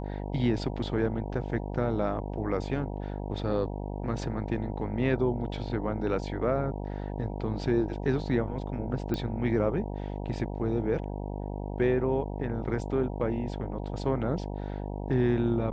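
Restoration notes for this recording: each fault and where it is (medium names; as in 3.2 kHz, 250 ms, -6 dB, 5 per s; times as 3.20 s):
buzz 50 Hz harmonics 19 -35 dBFS
9.14 s: pop -19 dBFS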